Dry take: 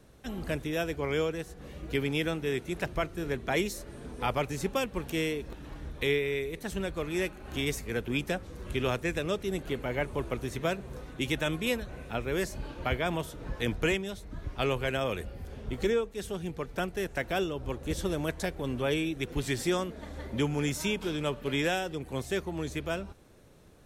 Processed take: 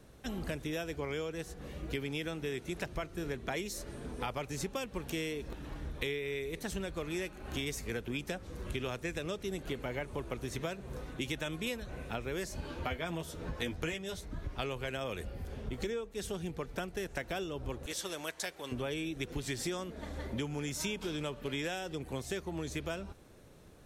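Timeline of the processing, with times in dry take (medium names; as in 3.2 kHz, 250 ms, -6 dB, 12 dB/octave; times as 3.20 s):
12.57–14.26 s: doubling 12 ms -5 dB
17.86–18.72 s: high-pass 1.2 kHz 6 dB/octave
whole clip: compression, threshold -34 dBFS; dynamic bell 5.7 kHz, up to +4 dB, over -56 dBFS, Q 0.9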